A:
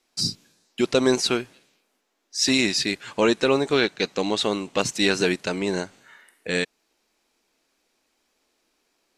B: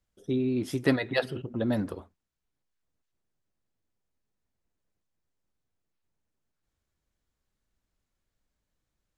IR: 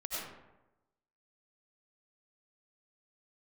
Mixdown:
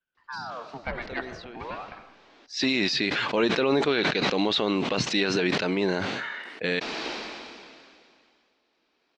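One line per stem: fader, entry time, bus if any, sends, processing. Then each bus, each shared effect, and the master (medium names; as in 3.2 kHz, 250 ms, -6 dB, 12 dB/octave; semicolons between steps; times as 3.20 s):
+0.5 dB, 0.15 s, no send, high-pass 120 Hz 6 dB/octave; decay stretcher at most 26 dB/s; auto duck -23 dB, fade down 0.55 s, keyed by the second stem
-8.5 dB, 0.00 s, send -10 dB, high-order bell 1.3 kHz +10 dB 1.3 oct; ring modulator with a swept carrier 850 Hz, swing 80%, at 0.43 Hz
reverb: on, RT60 1.0 s, pre-delay 55 ms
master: low-pass 4.5 kHz 24 dB/octave; peak limiter -13 dBFS, peak gain reduction 8.5 dB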